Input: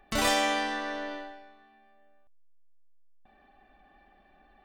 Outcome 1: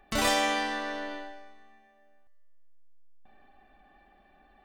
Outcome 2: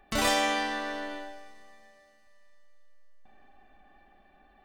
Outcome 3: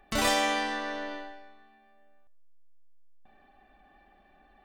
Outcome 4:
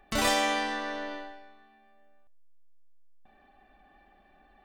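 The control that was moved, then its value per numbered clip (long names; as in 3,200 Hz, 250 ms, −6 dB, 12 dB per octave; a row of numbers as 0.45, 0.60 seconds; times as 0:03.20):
four-comb reverb, RT60: 2.1, 4.6, 0.8, 0.38 seconds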